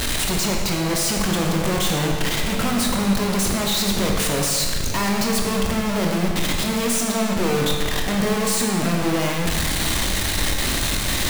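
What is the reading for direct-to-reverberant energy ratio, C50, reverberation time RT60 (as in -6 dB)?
0.0 dB, 2.5 dB, 1.7 s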